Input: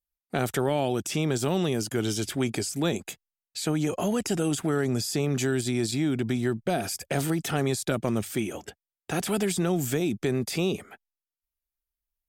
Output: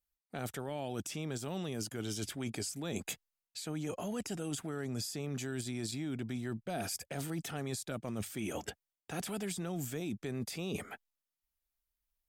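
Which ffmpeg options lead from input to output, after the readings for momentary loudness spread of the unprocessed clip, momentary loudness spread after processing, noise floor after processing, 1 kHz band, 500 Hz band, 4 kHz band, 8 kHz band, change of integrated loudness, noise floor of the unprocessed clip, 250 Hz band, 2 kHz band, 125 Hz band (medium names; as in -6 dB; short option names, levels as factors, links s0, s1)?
7 LU, 5 LU, under -85 dBFS, -11.5 dB, -13.0 dB, -9.5 dB, -8.5 dB, -11.5 dB, under -85 dBFS, -12.0 dB, -11.0 dB, -11.0 dB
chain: -af "equalizer=f=370:t=o:w=0.26:g=-4.5,areverse,acompressor=threshold=0.0158:ratio=10,areverse,volume=1.12"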